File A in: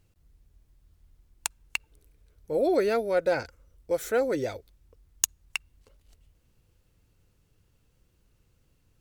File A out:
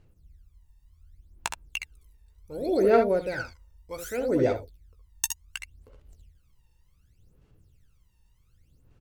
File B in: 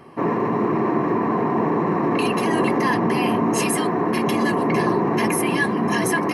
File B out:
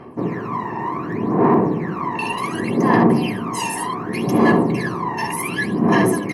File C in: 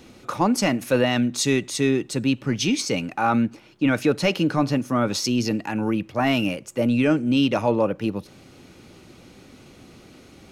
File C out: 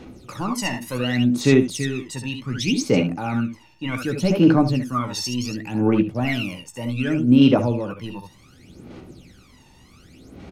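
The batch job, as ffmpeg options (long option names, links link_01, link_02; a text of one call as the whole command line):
ffmpeg -i in.wav -af "aecho=1:1:16|65|77:0.299|0.355|0.355,aphaser=in_gain=1:out_gain=1:delay=1.1:decay=0.78:speed=0.67:type=sinusoidal,volume=-6.5dB" out.wav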